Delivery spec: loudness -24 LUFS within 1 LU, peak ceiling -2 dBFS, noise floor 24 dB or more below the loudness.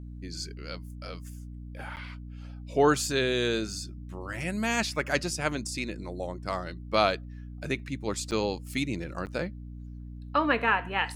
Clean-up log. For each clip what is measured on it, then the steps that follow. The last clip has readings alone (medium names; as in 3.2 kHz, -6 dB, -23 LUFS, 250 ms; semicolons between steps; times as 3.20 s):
dropouts 3; longest dropout 9.0 ms; hum 60 Hz; highest harmonic 300 Hz; hum level -39 dBFS; loudness -29.5 LUFS; peak level -10.0 dBFS; loudness target -24.0 LUFS
-> interpolate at 1.96/8.31/9.26 s, 9 ms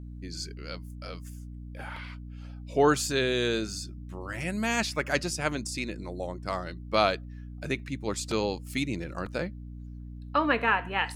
dropouts 0; hum 60 Hz; highest harmonic 300 Hz; hum level -39 dBFS
-> hum notches 60/120/180/240/300 Hz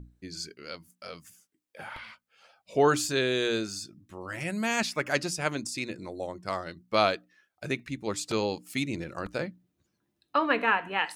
hum not found; loudness -29.5 LUFS; peak level -10.0 dBFS; loudness target -24.0 LUFS
-> trim +5.5 dB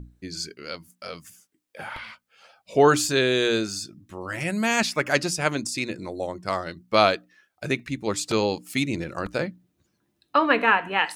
loudness -24.0 LUFS; peak level -4.5 dBFS; noise floor -75 dBFS